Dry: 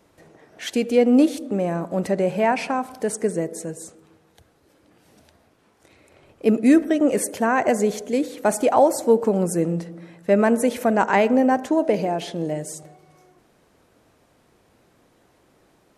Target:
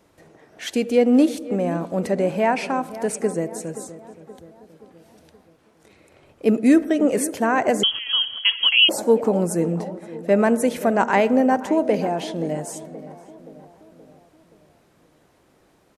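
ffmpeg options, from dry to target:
ffmpeg -i in.wav -filter_complex "[0:a]asplit=2[link_01][link_02];[link_02]adelay=525,lowpass=frequency=1800:poles=1,volume=-15dB,asplit=2[link_03][link_04];[link_04]adelay=525,lowpass=frequency=1800:poles=1,volume=0.54,asplit=2[link_05][link_06];[link_06]adelay=525,lowpass=frequency=1800:poles=1,volume=0.54,asplit=2[link_07][link_08];[link_08]adelay=525,lowpass=frequency=1800:poles=1,volume=0.54,asplit=2[link_09][link_10];[link_10]adelay=525,lowpass=frequency=1800:poles=1,volume=0.54[link_11];[link_03][link_05][link_07][link_09][link_11]amix=inputs=5:normalize=0[link_12];[link_01][link_12]amix=inputs=2:normalize=0,asettb=1/sr,asplit=3[link_13][link_14][link_15];[link_13]atrim=end=7.834[link_16];[link_14]atrim=start=7.83:end=8.89,asetpts=PTS-STARTPTS,afade=type=in:duration=0.004:curve=qsin,afade=type=out:start_time=1.056:duration=0.004:curve=qsin,lowpass=frequency=3000:width_type=q:width=0.5098,lowpass=frequency=3000:width_type=q:width=0.6013,lowpass=frequency=3000:width_type=q:width=0.9,lowpass=frequency=3000:width_type=q:width=2.563,afreqshift=-3500[link_17];[link_15]atrim=start=8.886[link_18];[link_16][link_17]acrossfade=duration=0.004:curve1=hsin:curve2=qsin[link_19];[link_19][link_18]acrossfade=duration=0.004:curve1=qsin:curve2=hsin" out.wav

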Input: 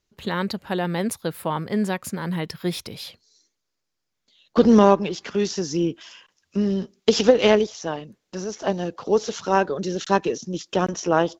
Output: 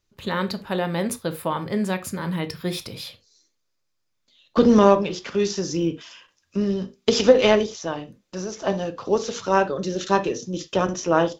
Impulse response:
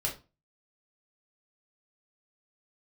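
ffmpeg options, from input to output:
-filter_complex "[0:a]asplit=2[link_01][link_02];[1:a]atrim=start_sample=2205,atrim=end_sample=3969,asetrate=38367,aresample=44100[link_03];[link_02][link_03]afir=irnorm=-1:irlink=0,volume=-10dB[link_04];[link_01][link_04]amix=inputs=2:normalize=0,volume=-2dB"

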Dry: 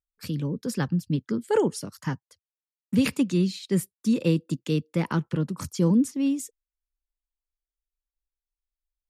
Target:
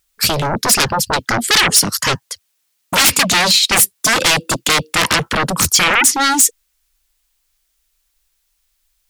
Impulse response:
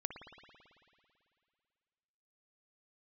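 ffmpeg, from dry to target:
-af "aeval=exprs='0.299*sin(PI/2*10*val(0)/0.299)':channel_layout=same,tiltshelf=frequency=1200:gain=-6"

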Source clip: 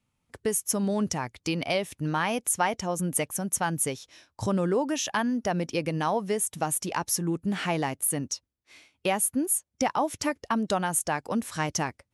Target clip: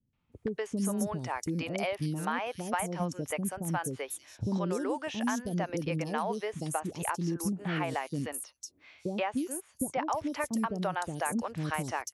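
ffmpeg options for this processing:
ffmpeg -i in.wav -filter_complex "[0:a]acrossover=split=440|4500[link_01][link_02][link_03];[link_02]adelay=130[link_04];[link_03]adelay=320[link_05];[link_01][link_04][link_05]amix=inputs=3:normalize=0,acrossover=split=2700|7700[link_06][link_07][link_08];[link_06]acompressor=threshold=-28dB:ratio=4[link_09];[link_07]acompressor=threshold=-51dB:ratio=4[link_10];[link_08]acompressor=threshold=-42dB:ratio=4[link_11];[link_09][link_10][link_11]amix=inputs=3:normalize=0" out.wav

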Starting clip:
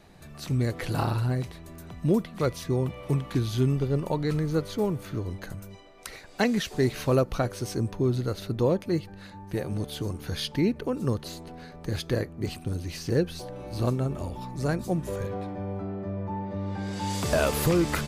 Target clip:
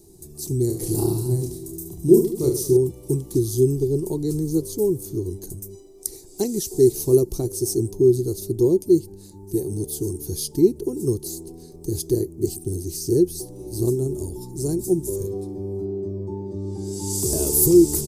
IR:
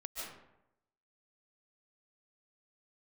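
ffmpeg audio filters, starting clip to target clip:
-filter_complex "[0:a]firequalizer=gain_entry='entry(100,0);entry(240,-5);entry(370,13);entry(530,-15);entry(860,-11);entry(1400,-29);entry(2700,-20);entry(5200,4);entry(8400,14)':delay=0.05:min_phase=1,asettb=1/sr,asplit=3[link_01][link_02][link_03];[link_01]atrim=end=0.674[link_04];[link_02]atrim=start=0.67:end=2.77,asetpts=PTS-STARTPTS,afade=type=in:duration=0.004:curve=qsin,afade=type=out:start_time=2.096:duration=0.004:curve=qsin,aecho=1:1:30|72|130.8|213.1|328.4:0.631|0.398|0.251|0.158|0.1,atrim=end_sample=92610[link_05];[link_03]atrim=start=2.766[link_06];[link_04][link_05]acrossfade=duration=0.004:curve1=hsin:curve2=qsin[link_07];[link_07][link_06]acrossfade=duration=0.004:curve1=qsin:curve2=hsin,volume=2.5dB"

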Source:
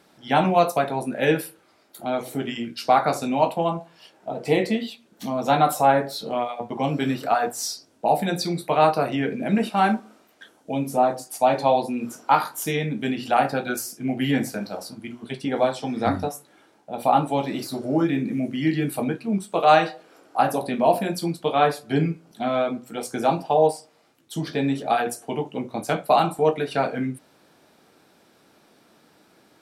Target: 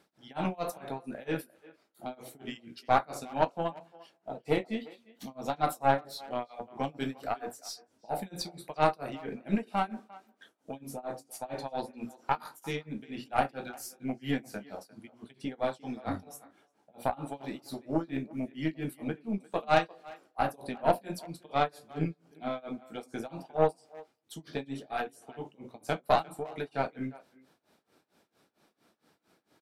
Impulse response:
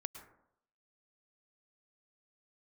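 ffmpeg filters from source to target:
-filter_complex "[0:a]tremolo=f=4.4:d=0.97,aeval=exprs='0.631*(cos(1*acos(clip(val(0)/0.631,-1,1)))-cos(1*PI/2))+0.0708*(cos(4*acos(clip(val(0)/0.631,-1,1)))-cos(4*PI/2))+0.0224*(cos(7*acos(clip(val(0)/0.631,-1,1)))-cos(7*PI/2))':channel_layout=same,asplit=2[link_01][link_02];[link_02]adelay=350,highpass=300,lowpass=3400,asoftclip=type=hard:threshold=-13.5dB,volume=-20dB[link_03];[link_01][link_03]amix=inputs=2:normalize=0,volume=-6dB"

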